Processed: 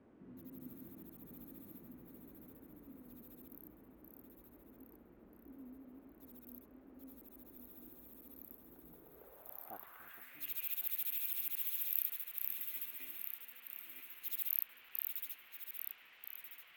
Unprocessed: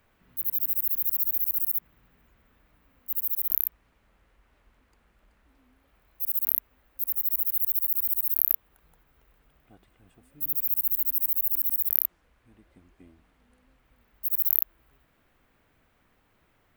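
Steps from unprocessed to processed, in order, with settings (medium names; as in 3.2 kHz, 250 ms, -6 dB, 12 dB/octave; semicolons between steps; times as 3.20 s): backward echo that repeats 643 ms, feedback 58%, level -4 dB; band-pass sweep 290 Hz -> 2.7 kHz, 8.90–10.50 s; trim +14 dB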